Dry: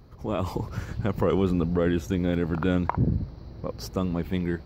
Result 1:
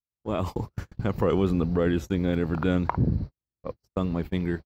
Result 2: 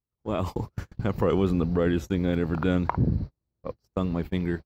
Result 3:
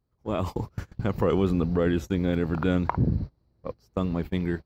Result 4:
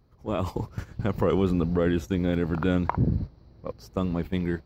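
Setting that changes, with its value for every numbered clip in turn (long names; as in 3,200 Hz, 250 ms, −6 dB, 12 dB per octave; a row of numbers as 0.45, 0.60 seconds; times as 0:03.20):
noise gate, range: −55, −41, −26, −11 decibels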